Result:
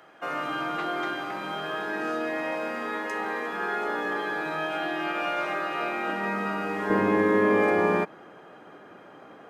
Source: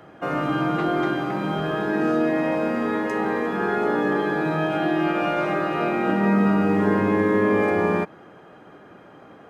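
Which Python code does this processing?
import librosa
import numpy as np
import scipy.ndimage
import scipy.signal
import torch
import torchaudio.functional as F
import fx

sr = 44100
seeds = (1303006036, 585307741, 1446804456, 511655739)

y = fx.highpass(x, sr, hz=fx.steps((0.0, 1200.0), (6.9, 280.0)), slope=6)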